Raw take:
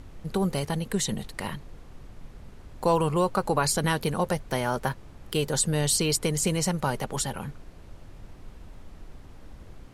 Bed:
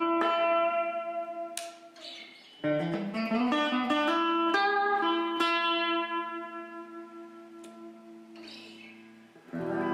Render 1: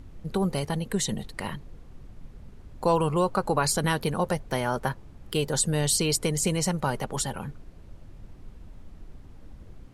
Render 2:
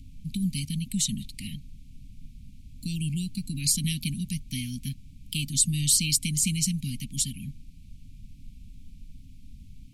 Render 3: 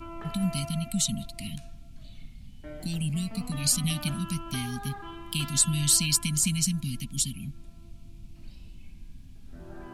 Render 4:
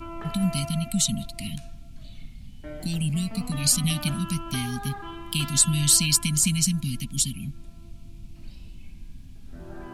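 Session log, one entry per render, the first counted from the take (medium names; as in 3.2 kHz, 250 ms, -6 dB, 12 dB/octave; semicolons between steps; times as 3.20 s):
noise reduction 6 dB, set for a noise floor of -47 dBFS
Chebyshev band-stop 270–2300 Hz, order 5; treble shelf 4.3 kHz +5.5 dB
add bed -15 dB
trim +3.5 dB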